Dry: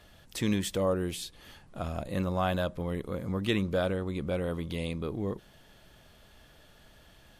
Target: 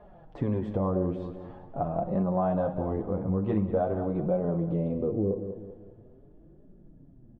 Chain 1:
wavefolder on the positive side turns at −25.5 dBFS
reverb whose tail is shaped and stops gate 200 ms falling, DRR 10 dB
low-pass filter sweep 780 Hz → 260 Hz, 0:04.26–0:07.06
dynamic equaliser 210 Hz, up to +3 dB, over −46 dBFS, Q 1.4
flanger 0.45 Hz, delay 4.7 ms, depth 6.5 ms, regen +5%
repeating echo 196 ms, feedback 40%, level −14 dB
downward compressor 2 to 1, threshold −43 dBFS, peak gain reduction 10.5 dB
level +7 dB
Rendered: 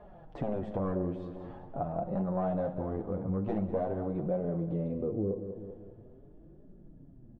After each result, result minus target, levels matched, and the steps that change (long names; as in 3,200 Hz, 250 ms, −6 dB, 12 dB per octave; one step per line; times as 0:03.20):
wavefolder on the positive side: distortion +24 dB; downward compressor: peak gain reduction +3.5 dB
change: wavefolder on the positive side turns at −17 dBFS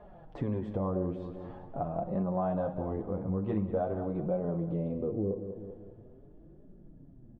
downward compressor: peak gain reduction +4 dB
change: downward compressor 2 to 1, threshold −34.5 dBFS, peak gain reduction 7 dB